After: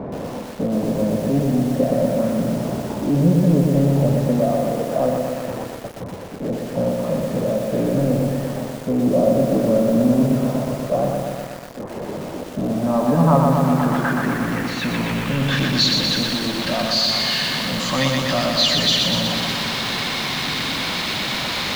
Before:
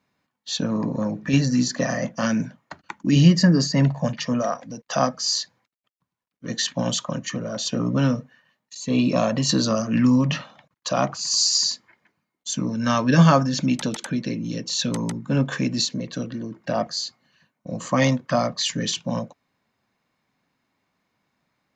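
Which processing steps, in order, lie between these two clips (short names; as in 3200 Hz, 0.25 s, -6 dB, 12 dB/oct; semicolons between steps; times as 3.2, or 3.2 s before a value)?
zero-crossing step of -17.5 dBFS; high shelf 6500 Hz +8 dB; in parallel at -10.5 dB: soft clip -15.5 dBFS, distortion -12 dB; on the sum: low-pass sweep 550 Hz -> 3900 Hz, 12.51–15.75; lo-fi delay 0.122 s, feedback 80%, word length 5-bit, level -3 dB; gain -7 dB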